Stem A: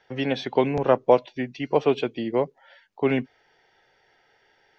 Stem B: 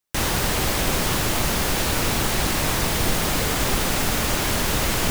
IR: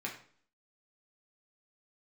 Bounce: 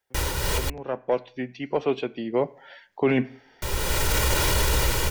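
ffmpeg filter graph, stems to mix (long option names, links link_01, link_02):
-filter_complex "[0:a]asoftclip=type=tanh:threshold=-6dB,volume=-4dB,afade=type=in:start_time=0.68:duration=0.72:silence=0.334965,afade=type=in:start_time=2.28:duration=0.41:silence=0.354813,asplit=3[link_01][link_02][link_03];[link_02]volume=-14.5dB[link_04];[1:a]aecho=1:1:2.1:0.69,flanger=delay=1.2:depth=10:regen=-71:speed=1.5:shape=triangular,volume=-1.5dB,asplit=3[link_05][link_06][link_07];[link_05]atrim=end=0.7,asetpts=PTS-STARTPTS,afade=type=out:start_time=0.696:duration=0.004:curve=hsin[link_08];[link_06]atrim=start=0.7:end=3.62,asetpts=PTS-STARTPTS,volume=0[link_09];[link_07]atrim=start=3.62,asetpts=PTS-STARTPTS,afade=type=in:duration=0.004:curve=hsin[link_10];[link_08][link_09][link_10]concat=n=3:v=0:a=1[link_11];[link_03]apad=whole_len=225429[link_12];[link_11][link_12]sidechaincompress=threshold=-45dB:ratio=12:attack=22:release=753[link_13];[2:a]atrim=start_sample=2205[link_14];[link_04][link_14]afir=irnorm=-1:irlink=0[link_15];[link_01][link_13][link_15]amix=inputs=3:normalize=0,equalizer=frequency=64:width=3.8:gain=10,dynaudnorm=framelen=200:gausssize=7:maxgain=9dB,alimiter=limit=-12.5dB:level=0:latency=1:release=32"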